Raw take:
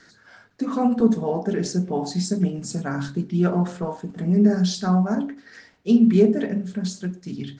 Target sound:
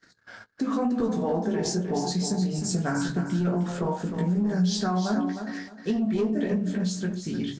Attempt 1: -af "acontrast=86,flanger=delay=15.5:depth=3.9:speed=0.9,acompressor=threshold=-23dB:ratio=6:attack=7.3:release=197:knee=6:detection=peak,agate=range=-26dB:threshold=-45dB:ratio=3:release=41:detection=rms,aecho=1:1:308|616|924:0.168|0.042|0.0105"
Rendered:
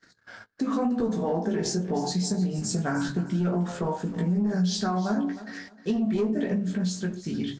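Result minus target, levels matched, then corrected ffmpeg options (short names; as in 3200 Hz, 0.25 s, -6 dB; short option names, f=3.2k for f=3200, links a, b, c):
echo-to-direct -7 dB
-af "acontrast=86,flanger=delay=15.5:depth=3.9:speed=0.9,acompressor=threshold=-23dB:ratio=6:attack=7.3:release=197:knee=6:detection=peak,agate=range=-26dB:threshold=-45dB:ratio=3:release=41:detection=rms,aecho=1:1:308|616|924:0.376|0.094|0.0235"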